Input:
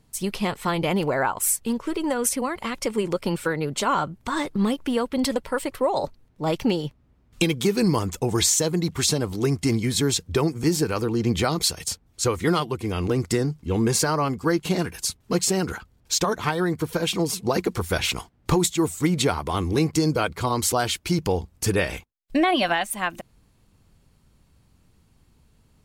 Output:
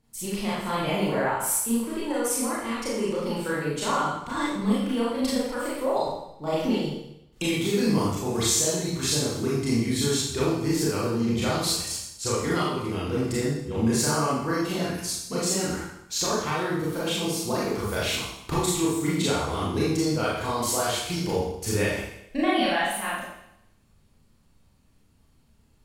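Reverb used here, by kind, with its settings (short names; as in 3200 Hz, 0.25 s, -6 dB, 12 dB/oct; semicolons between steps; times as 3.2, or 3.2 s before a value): Schroeder reverb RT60 0.8 s, combs from 27 ms, DRR -7.5 dB; gain -10 dB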